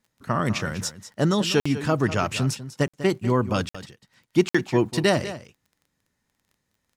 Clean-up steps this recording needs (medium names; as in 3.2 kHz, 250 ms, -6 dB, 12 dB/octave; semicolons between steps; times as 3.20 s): de-click; interpolate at 1.60/2.88/3.69/4.49 s, 55 ms; inverse comb 196 ms -13.5 dB